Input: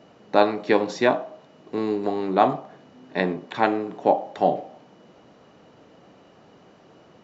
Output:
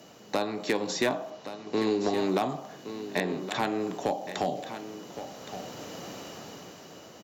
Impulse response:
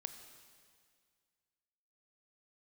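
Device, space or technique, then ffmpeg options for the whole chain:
FM broadcast chain: -filter_complex "[0:a]highpass=52,dynaudnorm=f=270:g=9:m=15dB,acrossover=split=250|3700[a][b][c];[a]acompressor=threshold=-32dB:ratio=4[d];[b]acompressor=threshold=-24dB:ratio=4[e];[c]acompressor=threshold=-50dB:ratio=4[f];[d][e][f]amix=inputs=3:normalize=0,aemphasis=mode=production:type=50fm,alimiter=limit=-14.5dB:level=0:latency=1:release=268,asoftclip=type=hard:threshold=-18dB,lowpass=f=15k:w=0.5412,lowpass=f=15k:w=1.3066,aemphasis=mode=production:type=50fm,asettb=1/sr,asplit=3[g][h][i];[g]atrim=end=1.304[j];[h]atrim=start=1.3:end=2.18,asetpts=PTS-STARTPTS,afade=t=in:d=0.004:c=qsin,afade=t=out:st=0.876:d=0.004:c=qsin,lowpass=f=6.2k:w=0.5412,lowpass=f=6.2k:w=1.3066[k];[i]atrim=start=2.176[l];[j][k]acrossfade=d=0.004:c1=hsin:c2=qsin[m];[m][l]acrossfade=d=0.004:c1=qsin:c2=hsin,aecho=1:1:1118:0.266"

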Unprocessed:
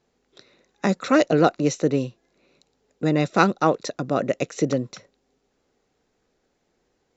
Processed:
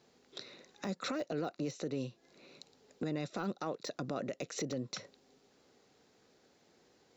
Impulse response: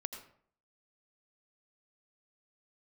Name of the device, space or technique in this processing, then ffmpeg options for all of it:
broadcast voice chain: -af "highpass=100,deesser=0.8,acompressor=threshold=-35dB:ratio=5,equalizer=f=4.4k:t=o:w=0.81:g=5,alimiter=level_in=6.5dB:limit=-24dB:level=0:latency=1:release=24,volume=-6.5dB,volume=3dB"

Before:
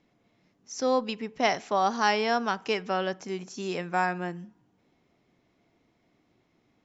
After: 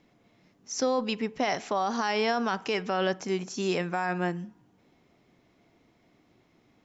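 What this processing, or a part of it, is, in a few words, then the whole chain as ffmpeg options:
stacked limiters: -af "alimiter=limit=-16dB:level=0:latency=1:release=222,alimiter=limit=-22.5dB:level=0:latency=1:release=22,volume=4.5dB"

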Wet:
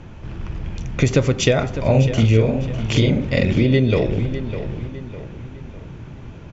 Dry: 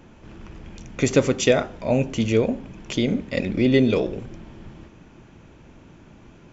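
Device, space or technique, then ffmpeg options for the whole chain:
jukebox: -filter_complex "[0:a]asettb=1/sr,asplit=3[a][b][c];[a]atrim=end=1.734[d];[b]atrim=start=1.73:end=3.65,asetpts=PTS-STARTPTS,afade=t=in:d=0.004:c=qsin,afade=t=out:st=1.916:d=0.004:c=qsin,asplit=2[e][f];[f]adelay=45,volume=-2dB[g];[e][g]amix=inputs=2:normalize=0,atrim=end_sample=84672[h];[c]atrim=start=3.646[i];[d][h]acrossfade=d=0.004:c1=hsin:c2=qsin[j];[j][i]acrossfade=d=0.004:c1=qsin:c2=hsin,lowpass=6k,lowshelf=f=170:t=q:w=1.5:g=6.5,acompressor=threshold=-20dB:ratio=3,asplit=2[k][l];[l]adelay=604,lowpass=f=4.3k:p=1,volume=-11dB,asplit=2[m][n];[n]adelay=604,lowpass=f=4.3k:p=1,volume=0.43,asplit=2[o][p];[p]adelay=604,lowpass=f=4.3k:p=1,volume=0.43,asplit=2[q][r];[r]adelay=604,lowpass=f=4.3k:p=1,volume=0.43[s];[k][m][o][q][s]amix=inputs=5:normalize=0,volume=6.5dB"

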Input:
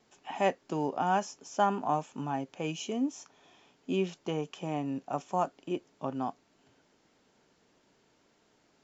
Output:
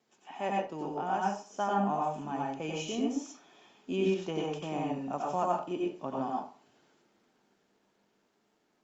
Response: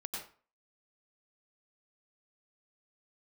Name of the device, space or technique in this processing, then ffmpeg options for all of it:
far-field microphone of a smart speaker: -filter_complex "[1:a]atrim=start_sample=2205[a];[0:a][a]afir=irnorm=-1:irlink=0,highpass=130,dynaudnorm=f=370:g=11:m=5dB,volume=-3.5dB" -ar 48000 -c:a libopus -b:a 48k

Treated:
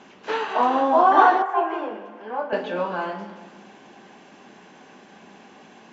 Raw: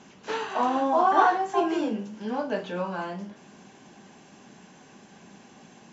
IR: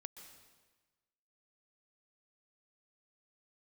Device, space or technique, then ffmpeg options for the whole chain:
filtered reverb send: -filter_complex "[0:a]asplit=2[a][b];[b]highpass=240,lowpass=4.4k[c];[1:a]atrim=start_sample=2205[d];[c][d]afir=irnorm=-1:irlink=0,volume=10dB[e];[a][e]amix=inputs=2:normalize=0,asettb=1/sr,asplit=3[f][g][h];[f]atrim=end=1.424[i];[g]atrim=start=1.42:end=2.53,asetpts=PTS-STARTPTS,afade=t=in:d=0.004:c=qsin,afade=t=out:st=1.106:d=0.004:c=qsin,acrossover=split=470 2300:gain=0.158 1 0.141[j][k][l];[j][k][l]amix=inputs=3:normalize=0[m];[h]atrim=start=2.526[n];[i][m]acrossfade=d=0.004:c1=hsin:c2=qsin[o];[o][n]acrossfade=d=0.004:c1=qsin:c2=hsin,volume=-3dB"

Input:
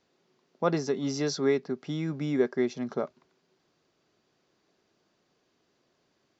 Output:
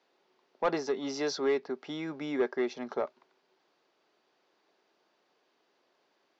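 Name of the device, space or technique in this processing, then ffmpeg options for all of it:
intercom: -af "highpass=390,lowpass=4.6k,equalizer=f=870:t=o:w=0.27:g=4.5,asoftclip=type=tanh:threshold=-21dB,volume=1.5dB"

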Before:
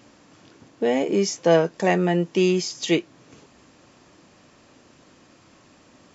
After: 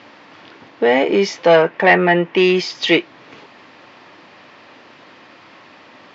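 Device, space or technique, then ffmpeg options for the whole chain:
overdrive pedal into a guitar cabinet: -filter_complex "[0:a]asettb=1/sr,asplit=3[a][b][c];[a]atrim=end=1.624[d];[b]atrim=start=1.62:end=2.37,asetpts=PTS-STARTPTS,afade=t=in:d=0.004:c=qsin,afade=t=out:st=0.746:d=0.004:c=qsin,highshelf=f=3.3k:t=q:w=1.5:g=-9[e];[c]atrim=start=2.366[f];[d][e]acrossfade=d=0.004:c1=hsin:c2=qsin[g];[g][f]acrossfade=d=0.004:c1=qsin:c2=hsin,asplit=2[h][i];[i]highpass=f=720:p=1,volume=15dB,asoftclip=type=tanh:threshold=-5dB[j];[h][j]amix=inputs=2:normalize=0,lowpass=f=6.7k:p=1,volume=-6dB,highpass=100,equalizer=f=100:t=q:w=4:g=5,equalizer=f=890:t=q:w=4:g=3,equalizer=f=2k:t=q:w=4:g=4,lowpass=f=4.3k:w=0.5412,lowpass=f=4.3k:w=1.3066,volume=3dB"

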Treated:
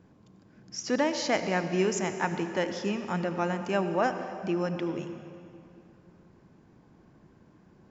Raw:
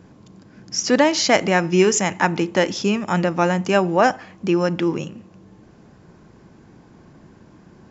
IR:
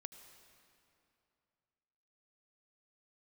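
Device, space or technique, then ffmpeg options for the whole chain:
swimming-pool hall: -filter_complex "[1:a]atrim=start_sample=2205[a];[0:a][a]afir=irnorm=-1:irlink=0,highshelf=f=4.3k:g=-5,volume=-5dB"

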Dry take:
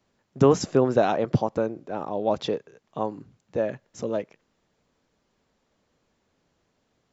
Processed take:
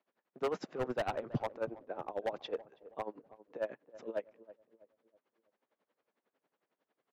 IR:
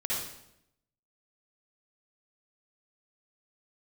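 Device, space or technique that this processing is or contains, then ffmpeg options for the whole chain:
helicopter radio: -filter_complex "[0:a]highpass=f=100:w=0.5412,highpass=f=100:w=1.3066,highpass=370,lowpass=2.5k,aeval=exprs='val(0)*pow(10,-20*(0.5-0.5*cos(2*PI*11*n/s))/20)':c=same,asoftclip=type=hard:threshold=-25dB,asplit=3[a][b][c];[a]afade=t=out:st=0.69:d=0.02[d];[b]asubboost=boost=7:cutoff=220,afade=t=in:st=0.69:d=0.02,afade=t=out:st=1.37:d=0.02[e];[c]afade=t=in:st=1.37:d=0.02[f];[d][e][f]amix=inputs=3:normalize=0,asplit=2[g][h];[h]adelay=325,lowpass=f=910:p=1,volume=-16dB,asplit=2[i][j];[j]adelay=325,lowpass=f=910:p=1,volume=0.46,asplit=2[k][l];[l]adelay=325,lowpass=f=910:p=1,volume=0.46,asplit=2[m][n];[n]adelay=325,lowpass=f=910:p=1,volume=0.46[o];[g][i][k][m][o]amix=inputs=5:normalize=0,volume=-3dB"

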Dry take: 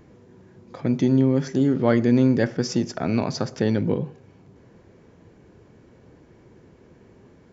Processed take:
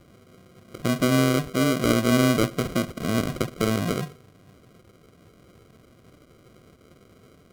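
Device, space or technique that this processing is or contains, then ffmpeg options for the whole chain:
crushed at another speed: -af "asetrate=55125,aresample=44100,acrusher=samples=40:mix=1:aa=0.000001,asetrate=35280,aresample=44100,volume=-2dB"

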